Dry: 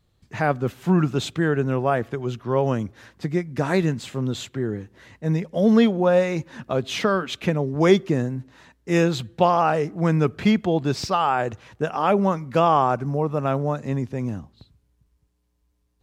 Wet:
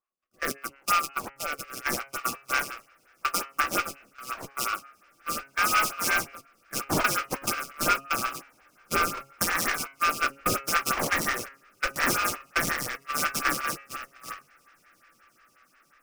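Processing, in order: band-swap scrambler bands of 1000 Hz; RIAA curve recording; sample-rate reducer 3800 Hz, jitter 20%; rotary speaker horn 0.8 Hz; compressor 5:1, threshold -23 dBFS, peak gain reduction 11.5 dB; on a send: diffused feedback echo 1.426 s, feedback 64%, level -6.5 dB; on the sum: gate -26 dBFS, range -30 dB; notch 430 Hz, Q 12; de-hum 137.2 Hz, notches 22; dynamic EQ 1800 Hz, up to -5 dB, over -42 dBFS, Q 2.1; photocell phaser 5.6 Hz; gain +7.5 dB

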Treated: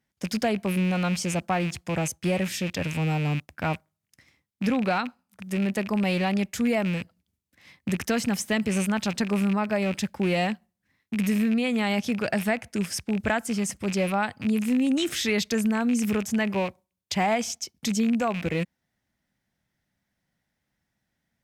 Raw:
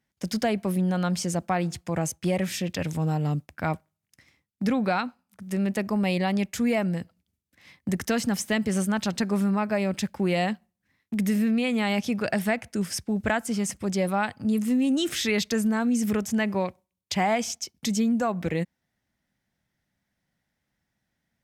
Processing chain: rattling part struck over -36 dBFS, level -25 dBFS

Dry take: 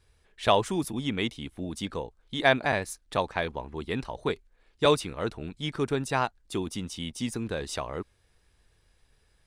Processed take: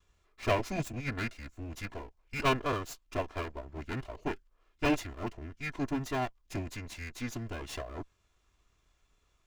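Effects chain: minimum comb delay 2.9 ms; formant shift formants -6 st; gain -4 dB

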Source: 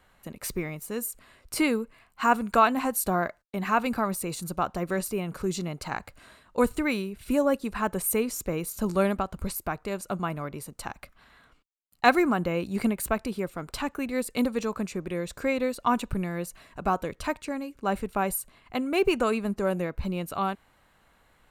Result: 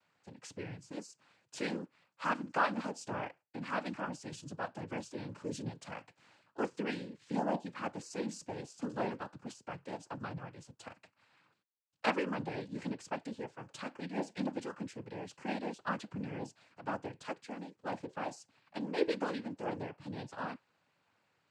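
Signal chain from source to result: flange 0.18 Hz, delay 5.6 ms, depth 2.5 ms, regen +79%; noise vocoder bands 8; gain -6.5 dB

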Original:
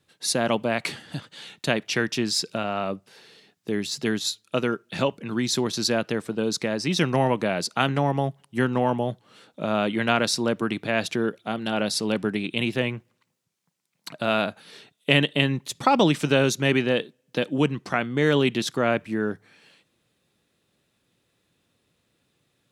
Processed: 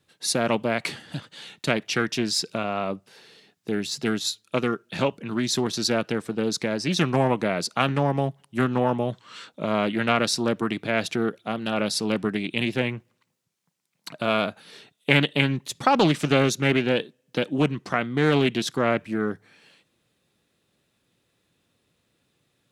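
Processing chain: spectral gain 9.13–9.49, 910–8500 Hz +11 dB; Doppler distortion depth 0.26 ms

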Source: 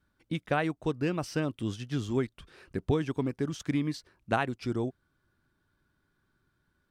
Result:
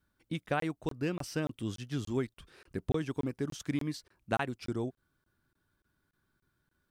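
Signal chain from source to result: high shelf 8900 Hz +8.5 dB; crackling interface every 0.29 s, samples 1024, zero, from 0.6; gain -3.5 dB

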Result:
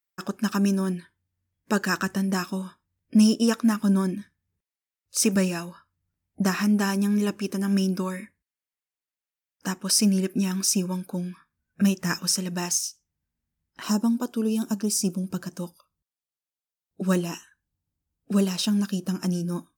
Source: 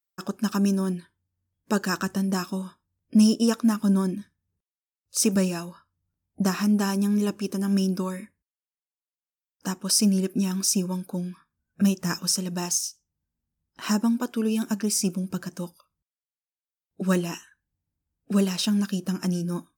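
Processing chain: bell 2000 Hz +6 dB 0.84 oct, from 13.83 s -10 dB, from 15.24 s -2.5 dB

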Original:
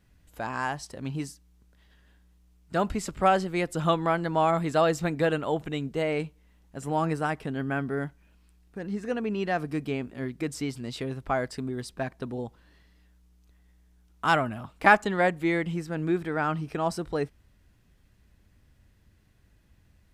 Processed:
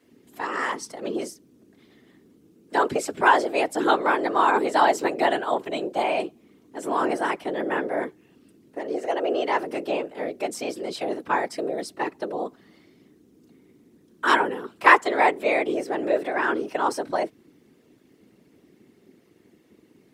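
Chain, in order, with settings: notch comb 300 Hz; frequency shift +210 Hz; whisperiser; gain +5 dB

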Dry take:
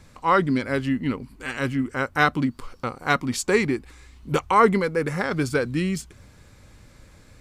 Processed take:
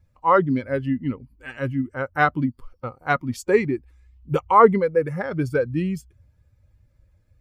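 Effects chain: per-bin expansion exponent 1.5; ten-band EQ 125 Hz +5 dB, 500 Hz +7 dB, 1000 Hz +5 dB, 4000 Hz -6 dB, 8000 Hz -7 dB; gain -1 dB

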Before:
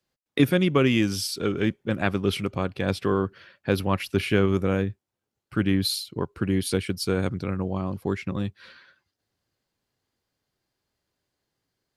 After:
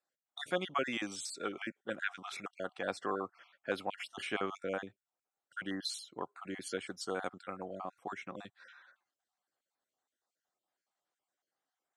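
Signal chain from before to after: random spectral dropouts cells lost 32%; speaker cabinet 400–8500 Hz, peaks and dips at 410 Hz -5 dB, 740 Hz +8 dB, 1300 Hz +5 dB, 2600 Hz -4 dB, 4700 Hz -8 dB, 8000 Hz +7 dB; gain -7.5 dB

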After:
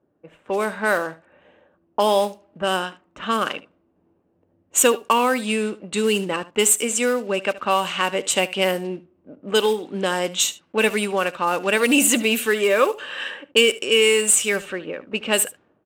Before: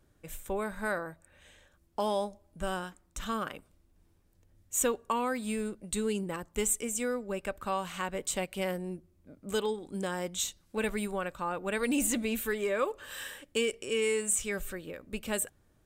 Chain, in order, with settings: block floating point 5-bit; HPF 240 Hz 12 dB/oct; bell 2800 Hz +8.5 dB 0.26 oct; low-pass opened by the level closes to 740 Hz, open at -28.5 dBFS; AGC gain up to 7 dB; on a send: echo 74 ms -18 dB; on the sum: gain +5.5 dB

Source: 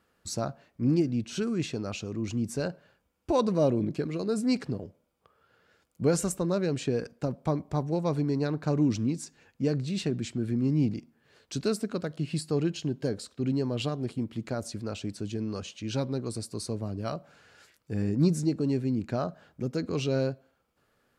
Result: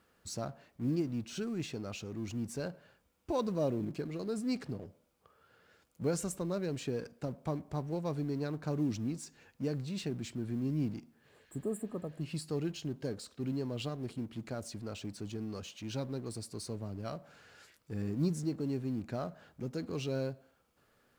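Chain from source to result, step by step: G.711 law mismatch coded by mu; spectral repair 11.31–12.19, 1300–7000 Hz before; gain -8.5 dB

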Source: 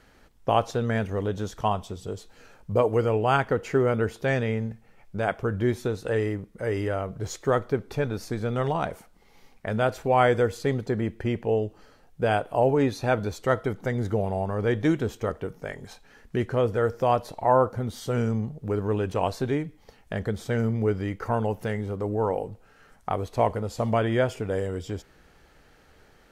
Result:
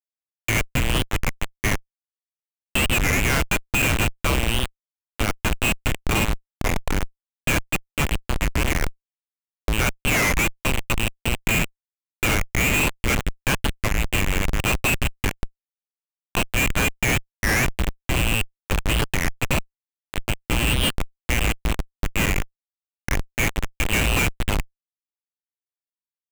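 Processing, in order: inverted band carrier 2900 Hz; early reflections 28 ms -17 dB, 62 ms -12.5 dB; on a send at -20 dB: reverb RT60 3.4 s, pre-delay 3 ms; on the sum: Schmitt trigger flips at -19.5 dBFS; record warp 33 1/3 rpm, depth 250 cents; gain +7 dB

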